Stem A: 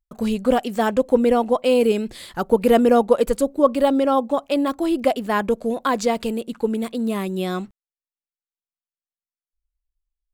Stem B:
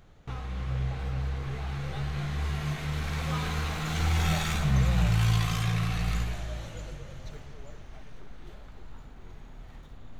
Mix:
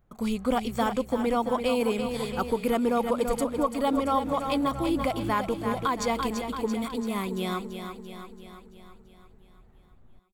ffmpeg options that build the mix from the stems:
-filter_complex "[0:a]equalizer=f=130:w=0.53:g=-5,aecho=1:1:0.9:0.42,volume=-4dB,asplit=3[a][b][c];[b]volume=-8dB[d];[1:a]equalizer=f=4.6k:t=o:w=2:g=-13,volume=-10.5dB[e];[c]apad=whole_len=449506[f];[e][f]sidechaincompress=threshold=-29dB:ratio=8:attack=16:release=216[g];[d]aecho=0:1:337|674|1011|1348|1685|2022|2359|2696|3033:1|0.58|0.336|0.195|0.113|0.0656|0.0381|0.0221|0.0128[h];[a][g][h]amix=inputs=3:normalize=0,alimiter=limit=-15dB:level=0:latency=1:release=251"

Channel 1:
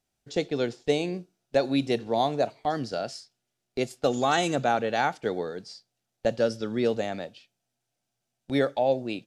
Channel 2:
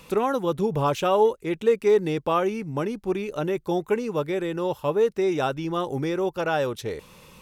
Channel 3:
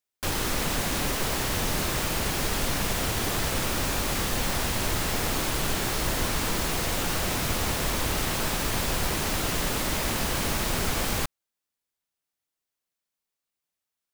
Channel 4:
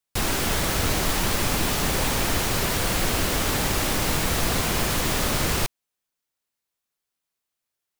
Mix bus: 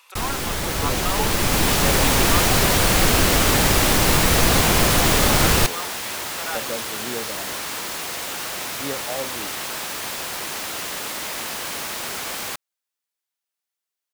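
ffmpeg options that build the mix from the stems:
-filter_complex "[0:a]adelay=300,volume=-7dB[a];[1:a]highpass=f=830:w=0.5412,highpass=f=830:w=1.3066,volume=-2dB[b];[2:a]highpass=f=710:p=1,adelay=1300,volume=1dB[c];[3:a]dynaudnorm=f=570:g=5:m=11.5dB,volume=-2dB[d];[a][b][c][d]amix=inputs=4:normalize=0"

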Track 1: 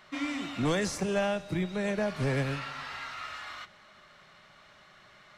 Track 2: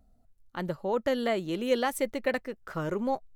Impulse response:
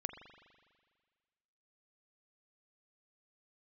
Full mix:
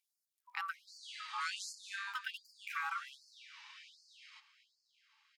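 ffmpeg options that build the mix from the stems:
-filter_complex "[0:a]lowpass=8.9k,equalizer=f=3.6k:t=o:w=1.9:g=3.5,adelay=750,volume=-5.5dB,afade=t=out:st=1.68:d=0.58:silence=0.446684,asplit=2[a][b];[b]volume=-13.5dB[c];[1:a]acompressor=threshold=-34dB:ratio=6,volume=2.5dB,asplit=3[d][e][f];[d]atrim=end=1.04,asetpts=PTS-STARTPTS,afade=t=out:st=1.036:d=0.004:c=hsin[g];[e]atrim=start=1.04:end=2.07,asetpts=PTS-STARTPTS,volume=0[h];[f]atrim=start=2.07,asetpts=PTS-STARTPTS,afade=t=in:d=0.004:c=hsin[i];[g][h][i]concat=n=3:v=0:a=1,asplit=2[j][k];[k]volume=-14.5dB[l];[2:a]atrim=start_sample=2205[m];[l][m]afir=irnorm=-1:irlink=0[n];[c]aecho=0:1:241:1[o];[a][j][n][o]amix=inputs=4:normalize=0,aeval=exprs='val(0)*sin(2*PI*980*n/s)':c=same,afftfilt=real='re*gte(b*sr/1024,790*pow(4300/790,0.5+0.5*sin(2*PI*1.3*pts/sr)))':imag='im*gte(b*sr/1024,790*pow(4300/790,0.5+0.5*sin(2*PI*1.3*pts/sr)))':win_size=1024:overlap=0.75"

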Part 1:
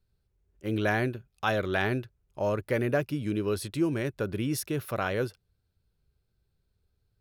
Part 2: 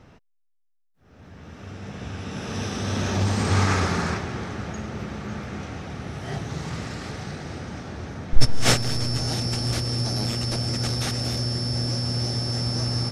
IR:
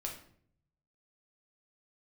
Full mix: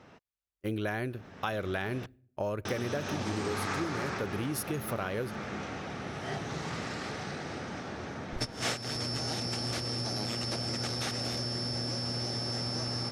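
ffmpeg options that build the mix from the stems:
-filter_complex "[0:a]aexciter=amount=1.6:drive=4.1:freq=10k,agate=range=-33dB:threshold=-45dB:ratio=3:detection=peak,volume=1dB,asplit=2[a][b];[b]volume=-23dB[c];[1:a]highpass=f=310:p=1,highshelf=f=5.9k:g=-6.5,volume=0dB,asplit=3[d][e][f];[d]atrim=end=2.06,asetpts=PTS-STARTPTS,afade=t=out:st=2.056:d=0.004:c=hsin[g];[e]atrim=start=2.06:end=2.65,asetpts=PTS-STARTPTS,volume=0[h];[f]atrim=start=2.65,asetpts=PTS-STARTPTS,afade=t=in:d=0.004:c=hsin[i];[g][h][i]concat=n=3:v=0:a=1[j];[2:a]atrim=start_sample=2205[k];[c][k]afir=irnorm=-1:irlink=0[l];[a][j][l]amix=inputs=3:normalize=0,acompressor=threshold=-30dB:ratio=6"

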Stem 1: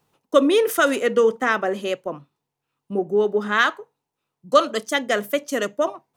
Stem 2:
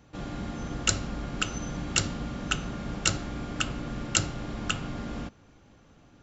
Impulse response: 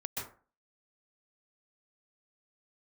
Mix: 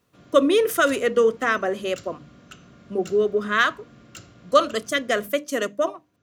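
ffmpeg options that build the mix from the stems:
-filter_complex "[0:a]volume=-1dB[a];[1:a]highpass=f=70:w=0.5412,highpass=f=70:w=1.3066,asoftclip=type=tanh:threshold=-19.5dB,volume=-13dB[b];[a][b]amix=inputs=2:normalize=0,asuperstop=centerf=850:order=4:qfactor=5.3,bandreject=f=50:t=h:w=6,bandreject=f=100:t=h:w=6,bandreject=f=150:t=h:w=6,bandreject=f=200:t=h:w=6,bandreject=f=250:t=h:w=6,bandreject=f=300:t=h:w=6"

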